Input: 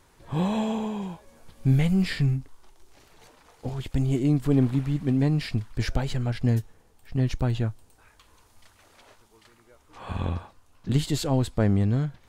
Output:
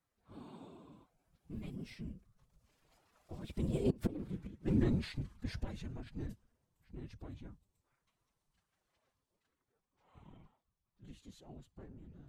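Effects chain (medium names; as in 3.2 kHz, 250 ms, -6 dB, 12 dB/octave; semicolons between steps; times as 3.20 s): Doppler pass-by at 4.30 s, 32 m/s, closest 2.6 m; whisper effect; inverted gate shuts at -26 dBFS, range -25 dB; formant-preserving pitch shift +4 st; trim +8 dB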